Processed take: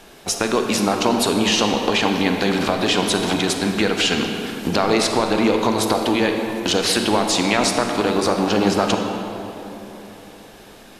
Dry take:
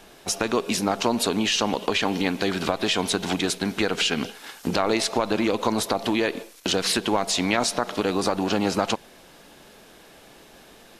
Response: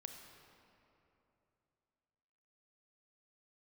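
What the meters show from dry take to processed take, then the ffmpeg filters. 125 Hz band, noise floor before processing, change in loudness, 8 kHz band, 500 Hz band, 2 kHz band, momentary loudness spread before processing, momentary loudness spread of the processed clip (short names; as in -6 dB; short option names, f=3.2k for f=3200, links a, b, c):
+6.0 dB, -50 dBFS, +5.0 dB, +4.0 dB, +5.5 dB, +5.0 dB, 5 LU, 8 LU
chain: -filter_complex "[1:a]atrim=start_sample=2205,asetrate=36603,aresample=44100[a];[0:a][a]afir=irnorm=-1:irlink=0,volume=8.5dB"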